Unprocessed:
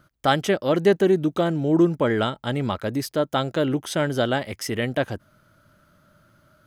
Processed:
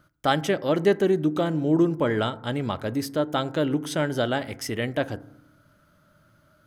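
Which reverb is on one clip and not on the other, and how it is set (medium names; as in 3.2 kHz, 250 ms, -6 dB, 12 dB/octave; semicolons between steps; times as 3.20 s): FDN reverb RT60 0.77 s, low-frequency decay 1.45×, high-frequency decay 0.3×, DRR 14.5 dB; trim -2.5 dB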